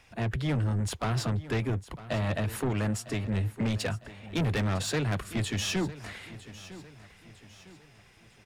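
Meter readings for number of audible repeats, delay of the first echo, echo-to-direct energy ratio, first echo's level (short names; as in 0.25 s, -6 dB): 3, 0.954 s, -15.5 dB, -16.5 dB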